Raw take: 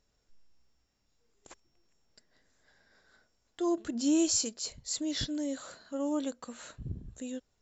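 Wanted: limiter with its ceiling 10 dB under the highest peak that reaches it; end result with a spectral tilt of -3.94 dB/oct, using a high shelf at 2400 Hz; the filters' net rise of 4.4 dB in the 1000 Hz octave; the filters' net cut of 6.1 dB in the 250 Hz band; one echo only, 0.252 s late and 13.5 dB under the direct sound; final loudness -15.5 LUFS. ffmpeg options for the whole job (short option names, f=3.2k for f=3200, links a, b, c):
-af "equalizer=f=250:t=o:g=-9,equalizer=f=1k:t=o:g=7.5,highshelf=f=2.4k:g=-8.5,alimiter=level_in=7.5dB:limit=-24dB:level=0:latency=1,volume=-7.5dB,aecho=1:1:252:0.211,volume=26.5dB"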